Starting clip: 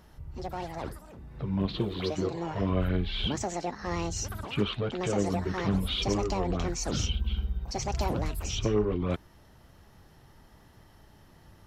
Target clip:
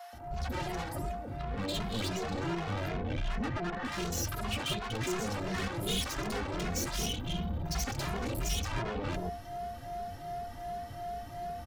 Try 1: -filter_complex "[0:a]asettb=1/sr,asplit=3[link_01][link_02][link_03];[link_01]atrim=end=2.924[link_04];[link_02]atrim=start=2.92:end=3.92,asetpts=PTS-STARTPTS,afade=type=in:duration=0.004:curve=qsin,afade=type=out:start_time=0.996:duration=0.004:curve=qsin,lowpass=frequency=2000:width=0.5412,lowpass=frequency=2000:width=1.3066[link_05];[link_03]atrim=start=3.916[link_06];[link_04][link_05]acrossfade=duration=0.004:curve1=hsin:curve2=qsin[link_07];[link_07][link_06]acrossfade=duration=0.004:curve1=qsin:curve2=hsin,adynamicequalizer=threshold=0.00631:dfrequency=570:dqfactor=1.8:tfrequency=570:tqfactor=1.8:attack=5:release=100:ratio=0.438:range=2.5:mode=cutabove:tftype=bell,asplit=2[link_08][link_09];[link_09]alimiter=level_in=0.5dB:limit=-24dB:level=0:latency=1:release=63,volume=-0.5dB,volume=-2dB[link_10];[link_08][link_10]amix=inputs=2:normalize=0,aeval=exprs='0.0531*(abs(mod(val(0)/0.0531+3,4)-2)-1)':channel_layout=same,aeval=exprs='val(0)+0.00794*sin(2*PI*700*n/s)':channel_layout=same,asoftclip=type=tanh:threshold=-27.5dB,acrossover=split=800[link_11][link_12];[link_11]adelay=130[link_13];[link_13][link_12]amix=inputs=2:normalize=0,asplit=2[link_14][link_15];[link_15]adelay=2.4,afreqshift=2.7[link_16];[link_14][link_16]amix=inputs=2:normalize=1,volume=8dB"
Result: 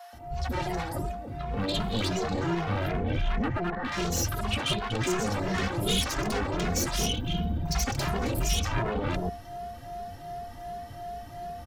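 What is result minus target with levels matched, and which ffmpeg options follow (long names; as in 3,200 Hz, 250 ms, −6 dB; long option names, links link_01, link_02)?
soft clipping: distortion −10 dB
-filter_complex "[0:a]asettb=1/sr,asplit=3[link_01][link_02][link_03];[link_01]atrim=end=2.924[link_04];[link_02]atrim=start=2.92:end=3.92,asetpts=PTS-STARTPTS,afade=type=in:duration=0.004:curve=qsin,afade=type=out:start_time=0.996:duration=0.004:curve=qsin,lowpass=frequency=2000:width=0.5412,lowpass=frequency=2000:width=1.3066[link_05];[link_03]atrim=start=3.916[link_06];[link_04][link_05]acrossfade=duration=0.004:curve1=hsin:curve2=qsin[link_07];[link_07][link_06]acrossfade=duration=0.004:curve1=qsin:curve2=hsin,adynamicequalizer=threshold=0.00631:dfrequency=570:dqfactor=1.8:tfrequency=570:tqfactor=1.8:attack=5:release=100:ratio=0.438:range=2.5:mode=cutabove:tftype=bell,asplit=2[link_08][link_09];[link_09]alimiter=level_in=0.5dB:limit=-24dB:level=0:latency=1:release=63,volume=-0.5dB,volume=-2dB[link_10];[link_08][link_10]amix=inputs=2:normalize=0,aeval=exprs='0.0531*(abs(mod(val(0)/0.0531+3,4)-2)-1)':channel_layout=same,aeval=exprs='val(0)+0.00794*sin(2*PI*700*n/s)':channel_layout=same,asoftclip=type=tanh:threshold=-37dB,acrossover=split=800[link_11][link_12];[link_11]adelay=130[link_13];[link_13][link_12]amix=inputs=2:normalize=0,asplit=2[link_14][link_15];[link_15]adelay=2.4,afreqshift=2.7[link_16];[link_14][link_16]amix=inputs=2:normalize=1,volume=8dB"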